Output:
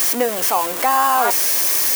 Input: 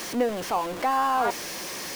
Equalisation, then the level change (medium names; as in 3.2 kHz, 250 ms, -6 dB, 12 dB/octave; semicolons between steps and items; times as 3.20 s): RIAA curve recording; peaking EQ 4.3 kHz -5 dB 1.6 oct; +8.0 dB